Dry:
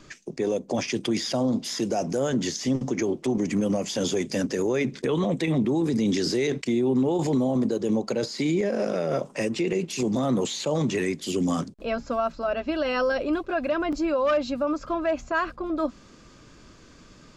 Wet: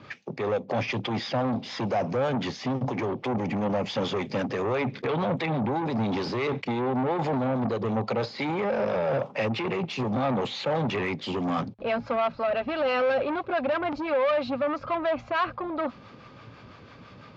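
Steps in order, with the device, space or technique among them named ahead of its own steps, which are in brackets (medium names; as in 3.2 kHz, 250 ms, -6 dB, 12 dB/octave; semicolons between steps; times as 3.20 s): guitar amplifier with harmonic tremolo (harmonic tremolo 6 Hz, depth 50%, crossover 570 Hz; saturation -29 dBFS, distortion -9 dB; cabinet simulation 86–4100 Hz, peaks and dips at 110 Hz +10 dB, 330 Hz -5 dB, 530 Hz +4 dB, 820 Hz +8 dB, 1.2 kHz +4 dB, 2.3 kHz +4 dB); trim +4.5 dB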